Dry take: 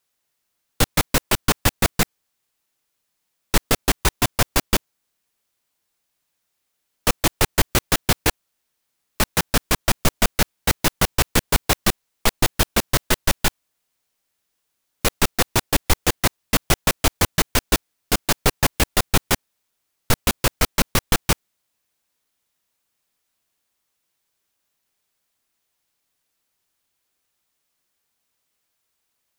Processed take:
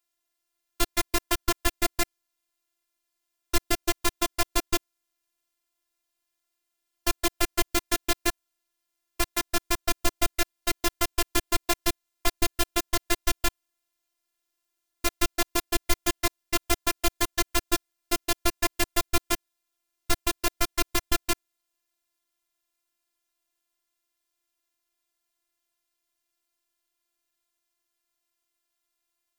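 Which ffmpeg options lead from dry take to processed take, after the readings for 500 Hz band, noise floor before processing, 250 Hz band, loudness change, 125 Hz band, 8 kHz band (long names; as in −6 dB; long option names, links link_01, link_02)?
−6.5 dB, −76 dBFS, −6.5 dB, −7.0 dB, −14.5 dB, −6.5 dB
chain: -af "afftfilt=real='hypot(re,im)*cos(PI*b)':imag='0':win_size=512:overlap=0.75,volume=-3dB"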